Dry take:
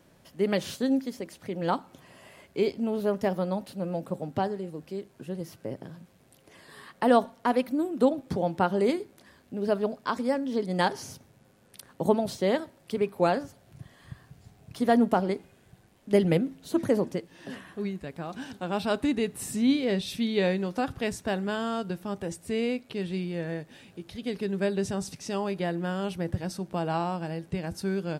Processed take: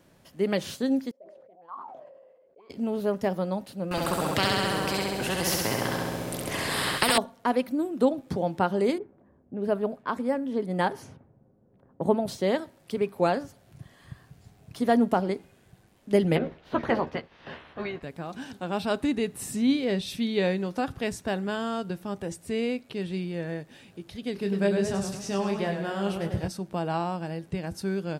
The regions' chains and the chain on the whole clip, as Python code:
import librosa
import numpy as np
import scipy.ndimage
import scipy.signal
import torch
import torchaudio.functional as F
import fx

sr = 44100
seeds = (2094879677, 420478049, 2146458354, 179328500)

y = fx.chain(x, sr, fx.hum_notches(base_hz=50, count=8),
    fx.auto_wah(base_hz=480.0, top_hz=1100.0, q=21.0, full_db=-24.5, direction='up'),
    fx.sustainer(db_per_s=33.0), at=(1.11, 2.7))
y = fx.chain(y, sr, fx.peak_eq(hz=120.0, db=7.5, octaves=3.0),
    fx.room_flutter(wall_m=11.4, rt60_s=1.4),
    fx.spectral_comp(ratio=4.0), at=(3.91, 7.18))
y = fx.chain(y, sr, fx.env_lowpass(base_hz=490.0, full_db=-25.5),
    fx.peak_eq(hz=5300.0, db=-11.0, octaves=1.3), at=(8.98, 12.28))
y = fx.spec_clip(y, sr, under_db=20, at=(16.34, 18.02), fade=0.02)
y = fx.air_absorb(y, sr, metres=310.0, at=(16.34, 18.02), fade=0.02)
y = fx.doubler(y, sr, ms=13.0, db=-6.5, at=(16.34, 18.02), fade=0.02)
y = fx.chain(y, sr, fx.doubler(ms=25.0, db=-6.0),
    fx.echo_warbled(ms=101, feedback_pct=54, rate_hz=2.8, cents=97, wet_db=-7.0), at=(24.33, 26.48))